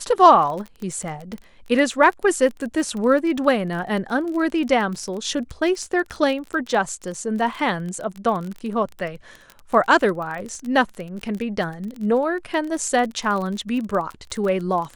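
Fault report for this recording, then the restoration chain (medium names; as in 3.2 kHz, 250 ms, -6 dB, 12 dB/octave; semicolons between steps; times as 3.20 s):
crackle 23 per s -27 dBFS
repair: de-click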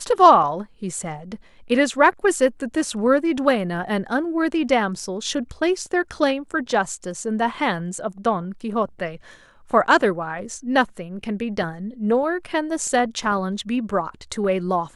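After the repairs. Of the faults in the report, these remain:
nothing left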